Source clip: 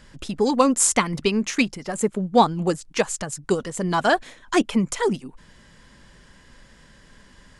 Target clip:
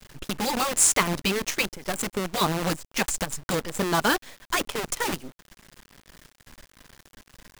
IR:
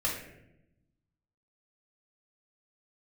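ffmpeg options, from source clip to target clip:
-filter_complex "[0:a]asplit=3[a][b][c];[a]afade=t=out:st=3.05:d=0.02[d];[b]asubboost=boost=7:cutoff=85,afade=t=in:st=3.05:d=0.02,afade=t=out:st=3.48:d=0.02[e];[c]afade=t=in:st=3.48:d=0.02[f];[d][e][f]amix=inputs=3:normalize=0,acrusher=bits=5:dc=4:mix=0:aa=0.000001,afftfilt=real='re*lt(hypot(re,im),0.708)':imag='im*lt(hypot(re,im),0.708)':win_size=1024:overlap=0.75"

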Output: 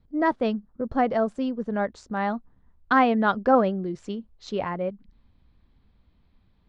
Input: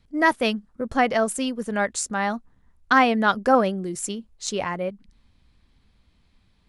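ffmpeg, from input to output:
-af "lowpass=f=3.9k:w=0.5412,lowpass=f=3.9k:w=1.3066,asetnsamples=n=441:p=0,asendcmd='2.17 equalizer g -7.5',equalizer=f=2.6k:t=o:w=1.7:g=-13.5"

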